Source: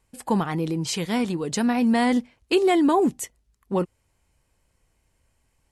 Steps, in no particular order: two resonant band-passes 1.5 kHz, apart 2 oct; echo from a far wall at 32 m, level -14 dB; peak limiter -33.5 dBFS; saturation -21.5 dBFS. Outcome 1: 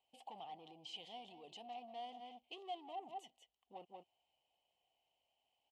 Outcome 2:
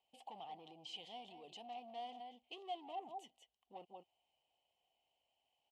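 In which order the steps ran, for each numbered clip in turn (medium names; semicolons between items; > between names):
saturation > echo from a far wall > peak limiter > two resonant band-passes; echo from a far wall > saturation > peak limiter > two resonant band-passes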